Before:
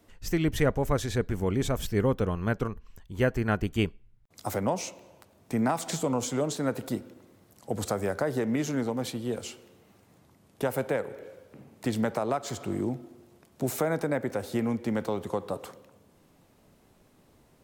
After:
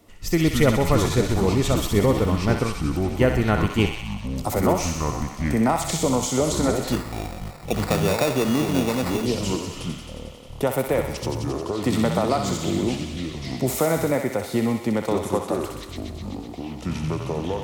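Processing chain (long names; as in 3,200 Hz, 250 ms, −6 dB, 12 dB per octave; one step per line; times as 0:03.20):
feedback echo with a high-pass in the loop 63 ms, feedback 78%, high-pass 1,000 Hz, level −4.5 dB
delay with pitch and tempo change per echo 81 ms, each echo −6 semitones, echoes 3, each echo −6 dB
0:06.92–0:09.26: sample-rate reduction 3,100 Hz, jitter 0%
notch filter 1,600 Hz, Q 6.7
level +6 dB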